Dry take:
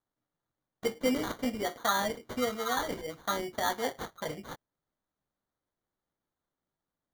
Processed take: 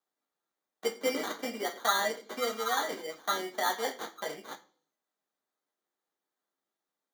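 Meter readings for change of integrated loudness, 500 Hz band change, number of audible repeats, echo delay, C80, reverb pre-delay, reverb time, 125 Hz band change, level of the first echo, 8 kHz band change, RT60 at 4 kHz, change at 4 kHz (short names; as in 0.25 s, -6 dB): 0.0 dB, -0.5 dB, none, none, 19.5 dB, 3 ms, 0.50 s, under -10 dB, none, +1.5 dB, 0.55 s, +2.0 dB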